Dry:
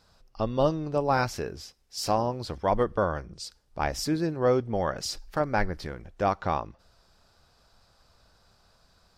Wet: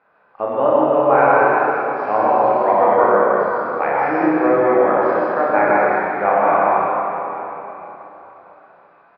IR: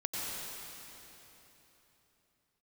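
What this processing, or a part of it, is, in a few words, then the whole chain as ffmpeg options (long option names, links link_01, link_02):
station announcement: -filter_complex "[0:a]highpass=430,lowpass=4500,lowpass=frequency=1900:width=0.5412,lowpass=frequency=1900:width=1.3066,equalizer=frequency=2400:width_type=o:width=0.32:gain=7,aecho=1:1:29.15|64.14:0.708|0.631[link_01];[1:a]atrim=start_sample=2205[link_02];[link_01][link_02]afir=irnorm=-1:irlink=0,volume=8dB"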